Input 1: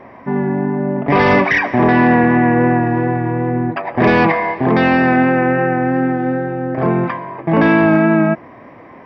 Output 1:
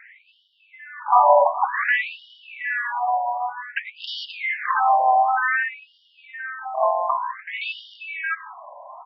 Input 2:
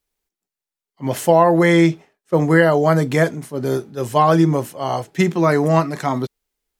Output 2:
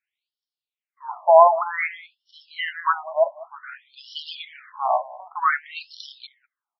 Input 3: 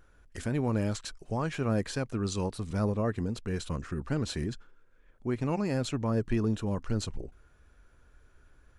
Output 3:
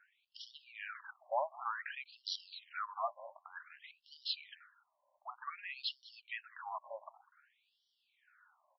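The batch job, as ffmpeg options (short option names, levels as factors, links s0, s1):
-filter_complex "[0:a]asplit=2[s0][s1];[s1]aecho=0:1:199:0.106[s2];[s0][s2]amix=inputs=2:normalize=0,afftfilt=real='re*between(b*sr/1024,760*pow(4100/760,0.5+0.5*sin(2*PI*0.54*pts/sr))/1.41,760*pow(4100/760,0.5+0.5*sin(2*PI*0.54*pts/sr))*1.41)':imag='im*between(b*sr/1024,760*pow(4100/760,0.5+0.5*sin(2*PI*0.54*pts/sr))/1.41,760*pow(4100/760,0.5+0.5*sin(2*PI*0.54*pts/sr))*1.41)':win_size=1024:overlap=0.75,volume=1.41"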